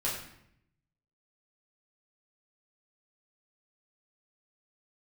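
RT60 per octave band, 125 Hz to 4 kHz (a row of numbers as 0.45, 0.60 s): 1.2, 0.95, 0.75, 0.70, 0.70, 0.60 s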